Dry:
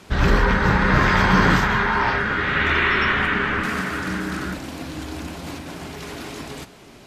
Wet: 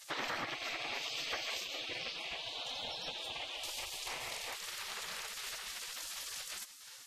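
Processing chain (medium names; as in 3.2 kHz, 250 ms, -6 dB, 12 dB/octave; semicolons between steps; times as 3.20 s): spectral gate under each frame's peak -20 dB weak; compression 3:1, threshold -45 dBFS, peak gain reduction 15.5 dB; trim +4 dB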